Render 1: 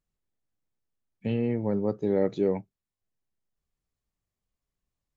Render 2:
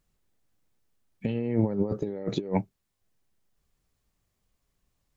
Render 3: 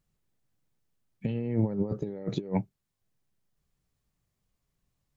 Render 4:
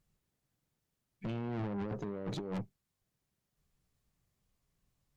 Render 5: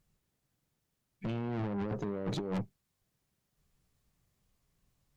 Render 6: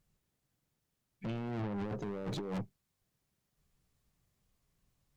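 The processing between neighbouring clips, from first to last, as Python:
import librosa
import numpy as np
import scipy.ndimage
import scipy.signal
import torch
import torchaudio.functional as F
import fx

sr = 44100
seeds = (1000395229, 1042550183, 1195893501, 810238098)

y1 = fx.over_compress(x, sr, threshold_db=-31.0, ratio=-0.5)
y1 = y1 * 10.0 ** (4.5 / 20.0)
y2 = fx.peak_eq(y1, sr, hz=140.0, db=6.5, octaves=0.98)
y2 = y2 * 10.0 ** (-4.5 / 20.0)
y3 = fx.tube_stage(y2, sr, drive_db=37.0, bias=0.55)
y3 = y3 * 10.0 ** (2.5 / 20.0)
y4 = fx.rider(y3, sr, range_db=10, speed_s=0.5)
y4 = y4 * 10.0 ** (3.5 / 20.0)
y5 = np.clip(y4, -10.0 ** (-33.0 / 20.0), 10.0 ** (-33.0 / 20.0))
y5 = y5 * 10.0 ** (-1.5 / 20.0)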